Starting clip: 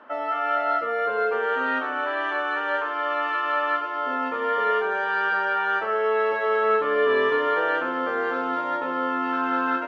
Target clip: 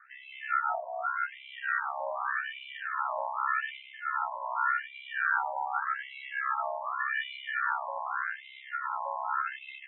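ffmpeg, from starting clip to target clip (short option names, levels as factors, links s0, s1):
-af "aeval=exprs='val(0)*sin(2*PI*33*n/s)':c=same,afftfilt=real='re*between(b*sr/1024,770*pow(2900/770,0.5+0.5*sin(2*PI*0.85*pts/sr))/1.41,770*pow(2900/770,0.5+0.5*sin(2*PI*0.85*pts/sr))*1.41)':imag='im*between(b*sr/1024,770*pow(2900/770,0.5+0.5*sin(2*PI*0.85*pts/sr))/1.41,770*pow(2900/770,0.5+0.5*sin(2*PI*0.85*pts/sr))*1.41)':win_size=1024:overlap=0.75"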